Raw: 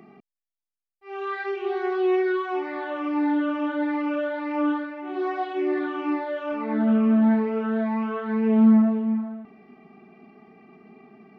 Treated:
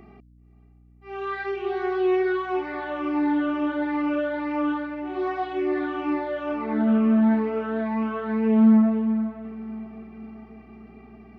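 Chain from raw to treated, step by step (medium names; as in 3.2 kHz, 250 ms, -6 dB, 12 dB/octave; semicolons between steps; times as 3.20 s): echo that smears into a reverb 513 ms, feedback 49%, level -15 dB; hum 60 Hz, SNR 29 dB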